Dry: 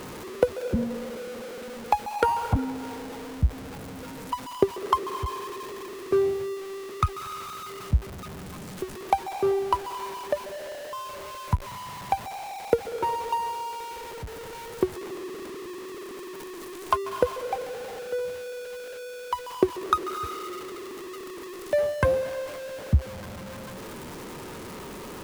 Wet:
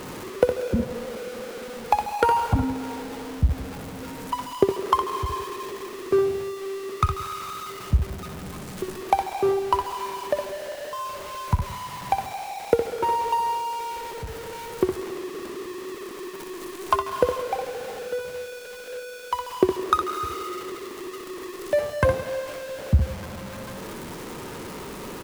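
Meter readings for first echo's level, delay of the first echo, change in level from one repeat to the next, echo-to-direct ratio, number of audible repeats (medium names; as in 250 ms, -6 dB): -7.0 dB, 62 ms, no regular repeats, -6.5 dB, 2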